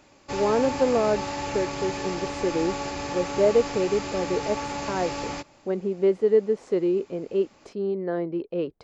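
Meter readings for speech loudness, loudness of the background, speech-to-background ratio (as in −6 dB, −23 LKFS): −26.0 LKFS, −31.5 LKFS, 5.5 dB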